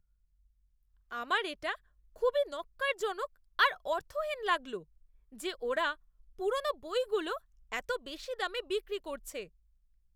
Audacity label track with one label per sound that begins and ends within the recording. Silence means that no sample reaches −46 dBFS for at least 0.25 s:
1.110000	1.750000	sound
2.160000	3.260000	sound
3.590000	4.820000	sound
5.340000	5.940000	sound
6.390000	7.380000	sound
7.720000	9.450000	sound